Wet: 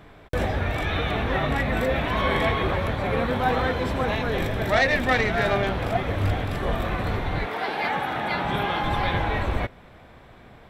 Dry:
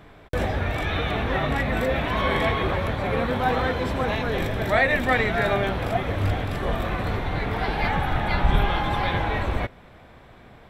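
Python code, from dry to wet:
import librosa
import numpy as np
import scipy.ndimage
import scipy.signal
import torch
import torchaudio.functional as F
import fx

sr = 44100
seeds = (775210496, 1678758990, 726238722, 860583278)

y = fx.self_delay(x, sr, depth_ms=0.077, at=(4.72, 6.08))
y = fx.highpass(y, sr, hz=fx.line((7.45, 380.0), (8.83, 130.0)), slope=12, at=(7.45, 8.83), fade=0.02)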